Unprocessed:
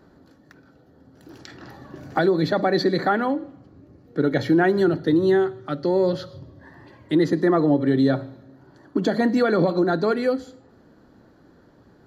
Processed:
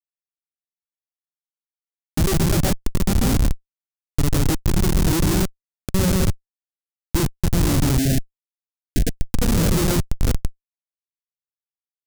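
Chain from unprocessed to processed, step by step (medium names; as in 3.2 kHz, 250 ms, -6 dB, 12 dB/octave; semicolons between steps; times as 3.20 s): local Wiener filter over 25 samples; 6.18–7.16 s: level held to a coarse grid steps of 12 dB; flange 0.21 Hz, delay 6.2 ms, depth 1.7 ms, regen -78%; level-controlled noise filter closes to 420 Hz, open at -19 dBFS; loudspeakers at several distances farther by 49 m -3 dB, 76 m -8 dB; tremolo saw up 1.1 Hz, depth 80%; Schmitt trigger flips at -25 dBFS; tone controls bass +9 dB, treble +11 dB; 7.98–9.25 s: elliptic band-stop 710–1600 Hz, stop band 50 dB; trim +6.5 dB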